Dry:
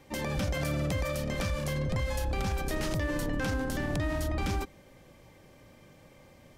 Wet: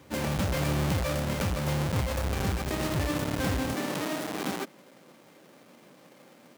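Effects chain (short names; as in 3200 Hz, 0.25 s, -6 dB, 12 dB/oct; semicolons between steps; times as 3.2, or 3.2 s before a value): half-waves squared off; HPF 59 Hz 24 dB/oct, from 3.74 s 190 Hz; gain -1.5 dB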